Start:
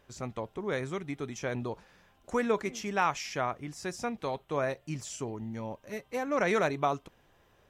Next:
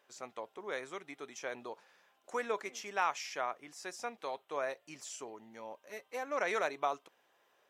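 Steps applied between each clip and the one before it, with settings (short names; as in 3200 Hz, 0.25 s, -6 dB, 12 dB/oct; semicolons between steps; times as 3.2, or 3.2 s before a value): HPF 490 Hz 12 dB/oct; gain -4 dB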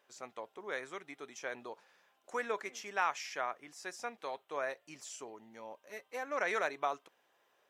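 dynamic EQ 1700 Hz, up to +4 dB, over -52 dBFS, Q 2.1; gain -1.5 dB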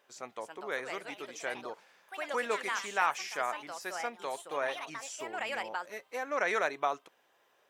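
echoes that change speed 0.322 s, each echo +4 st, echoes 2, each echo -6 dB; gain +3.5 dB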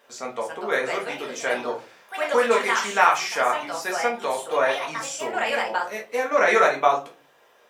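shoebox room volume 150 m³, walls furnished, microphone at 1.7 m; gain +8 dB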